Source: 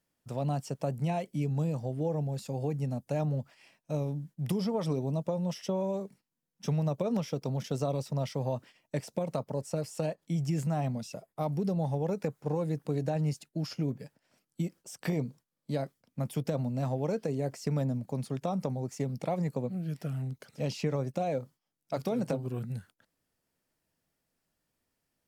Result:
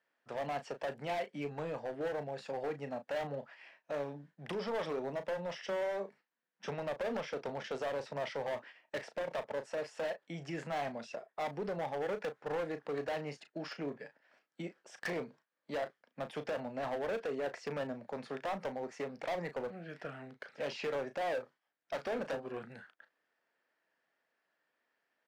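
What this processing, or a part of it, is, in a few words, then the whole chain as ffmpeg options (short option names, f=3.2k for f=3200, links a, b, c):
megaphone: -filter_complex "[0:a]highpass=500,lowpass=2.8k,equalizer=f=1.7k:t=o:w=0.43:g=7.5,asoftclip=type=hard:threshold=-36.5dB,asplit=2[a][b];[b]adelay=35,volume=-10.5dB[c];[a][c]amix=inputs=2:normalize=0,volume=3.5dB"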